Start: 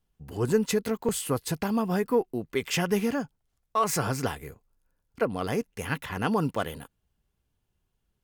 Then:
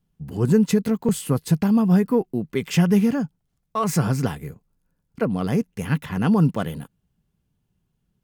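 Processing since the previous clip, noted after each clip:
parametric band 170 Hz +13.5 dB 1.3 octaves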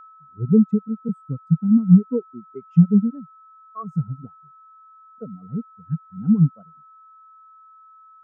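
steady tone 1,300 Hz −27 dBFS
reverb reduction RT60 0.52 s
every bin expanded away from the loudest bin 2.5 to 1
level +4 dB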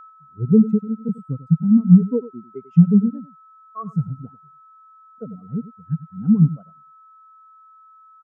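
single-tap delay 95 ms −15.5 dB
level +1.5 dB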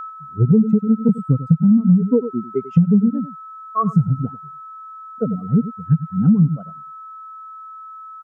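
in parallel at +2 dB: brickwall limiter −13.5 dBFS, peak gain reduction 12 dB
on the sum: downward compressor 8 to 1, threshold −16 dBFS, peak gain reduction 13.5 dB
level +5.5 dB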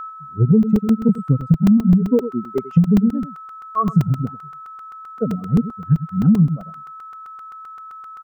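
regular buffer underruns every 0.13 s, samples 128, zero, from 0:00.63

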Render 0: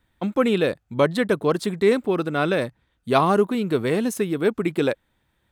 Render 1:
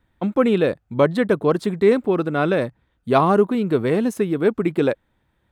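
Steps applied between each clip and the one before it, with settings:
high-shelf EQ 2,500 Hz −9.5 dB
level +3 dB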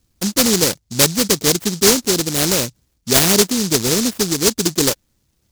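short delay modulated by noise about 5,500 Hz, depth 0.35 ms
level +2 dB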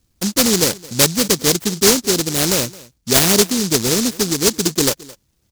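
single-tap delay 217 ms −21.5 dB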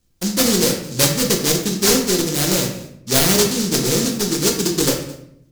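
convolution reverb RT60 0.70 s, pre-delay 6 ms, DRR 1 dB
level −4 dB

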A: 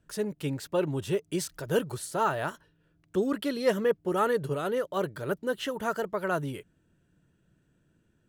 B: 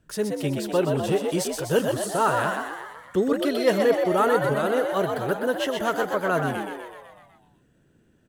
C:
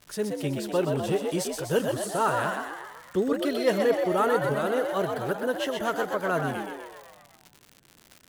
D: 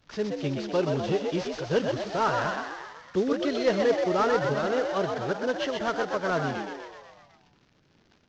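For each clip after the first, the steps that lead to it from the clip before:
echo with shifted repeats 125 ms, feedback 59%, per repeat +75 Hz, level −5 dB; level +4.5 dB
surface crackle 150 per second −33 dBFS; every ending faded ahead of time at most 410 dB per second; level −3 dB
variable-slope delta modulation 32 kbit/s

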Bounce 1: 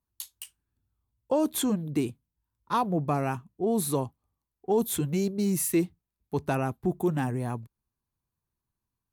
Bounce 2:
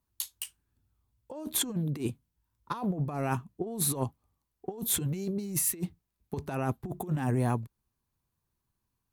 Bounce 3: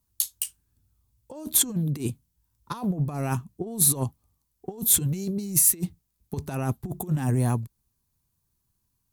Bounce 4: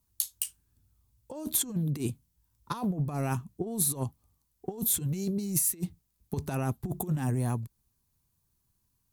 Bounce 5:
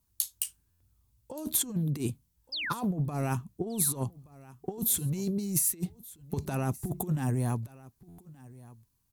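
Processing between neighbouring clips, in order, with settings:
compressor whose output falls as the input rises −30 dBFS, ratio −0.5
bass and treble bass +6 dB, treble +10 dB
downward compressor 3 to 1, threshold −27 dBFS, peak gain reduction 9.5 dB
sound drawn into the spectrogram fall, 0:02.52–0:02.73, 1,100–5,300 Hz −34 dBFS; single-tap delay 1,175 ms −21 dB; buffer that repeats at 0:00.70/0:08.08, samples 512, times 8

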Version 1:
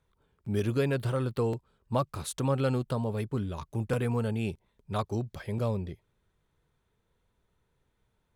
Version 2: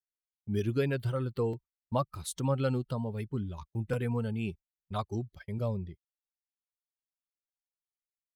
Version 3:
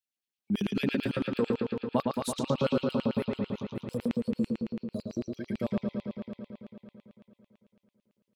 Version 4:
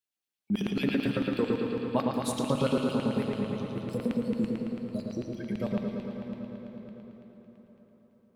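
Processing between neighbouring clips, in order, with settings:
spectral dynamics exaggerated over time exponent 1.5; noise gate −46 dBFS, range −30 dB
gain on a spectral selection 0:03.70–0:05.24, 640–3,900 Hz −27 dB; bucket-brigade delay 112 ms, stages 4,096, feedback 79%, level −3.5 dB; auto-filter high-pass square 9 Hz 210–2,700 Hz
dense smooth reverb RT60 4.9 s, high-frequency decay 0.65×, pre-delay 0 ms, DRR 4.5 dB

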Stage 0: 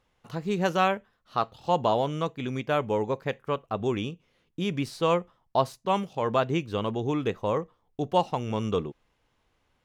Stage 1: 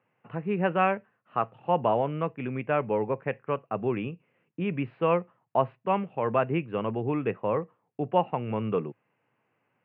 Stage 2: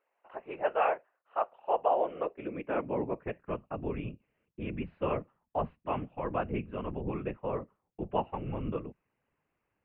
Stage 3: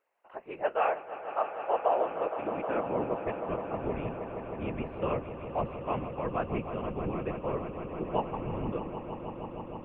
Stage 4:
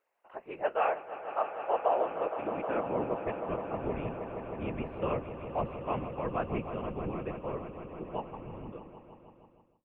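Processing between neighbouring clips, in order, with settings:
Chebyshev band-pass filter 110–2,700 Hz, order 5
high-pass filter sweep 640 Hz → 88 Hz, 0:01.80–0:04.15; random phases in short frames; level −8 dB
echo that builds up and dies away 157 ms, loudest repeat 5, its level −13 dB
fade-out on the ending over 3.27 s; level −1 dB

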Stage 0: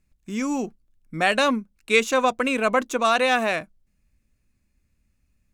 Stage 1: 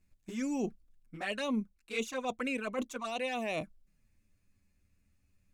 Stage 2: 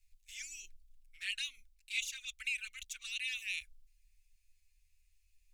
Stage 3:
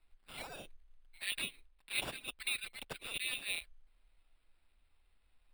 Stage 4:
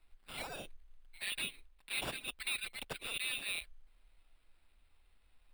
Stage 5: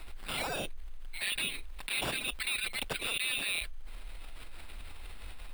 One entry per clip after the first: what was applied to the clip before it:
reversed playback; downward compressor 10 to 1, threshold −29 dBFS, peak gain reduction 17 dB; reversed playback; flanger swept by the level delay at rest 11.2 ms, full sweep at −28 dBFS
inverse Chebyshev band-stop filter 130–1,000 Hz, stop band 50 dB; level +4 dB
decimation without filtering 7×
in parallel at −1 dB: brickwall limiter −31.5 dBFS, peak gain reduction 9 dB; on the sum: soft clipping −28 dBFS, distortion −15 dB; level −2 dB
envelope flattener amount 70%; level +3 dB

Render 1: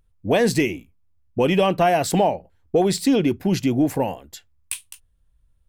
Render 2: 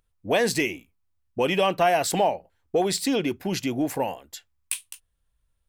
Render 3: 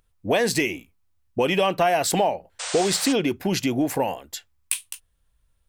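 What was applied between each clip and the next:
low-shelf EQ 370 Hz −11 dB
downward compressor 2 to 1, threshold −26 dBFS, peak gain reduction 6 dB; sound drawn into the spectrogram noise, 0:02.59–0:03.13, 460–9,100 Hz −37 dBFS; level +5.5 dB

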